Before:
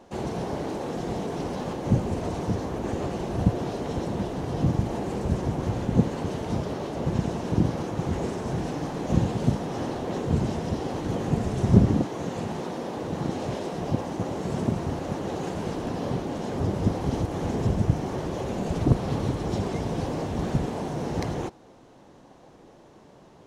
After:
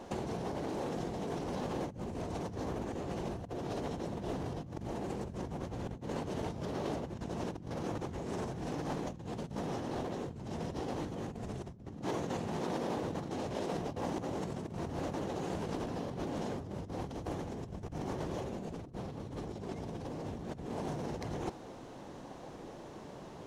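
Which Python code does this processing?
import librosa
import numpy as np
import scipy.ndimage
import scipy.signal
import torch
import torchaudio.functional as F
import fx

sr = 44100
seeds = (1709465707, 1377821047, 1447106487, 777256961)

y = fx.peak_eq(x, sr, hz=250.0, db=2.5, octaves=2.8, at=(18.44, 20.77))
y = fx.over_compress(y, sr, threshold_db=-36.0, ratio=-1.0)
y = y * librosa.db_to_amplitude(-4.0)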